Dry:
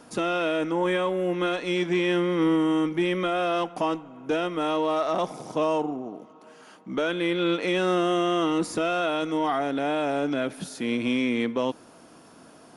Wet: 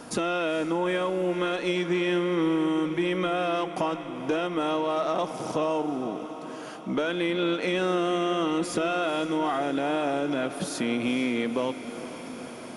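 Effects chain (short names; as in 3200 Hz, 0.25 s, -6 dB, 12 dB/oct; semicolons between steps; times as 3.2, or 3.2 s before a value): compressor 2.5:1, threshold -35 dBFS, peak gain reduction 10 dB; diffused feedback echo 0.48 s, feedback 72%, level -13.5 dB; gain +7 dB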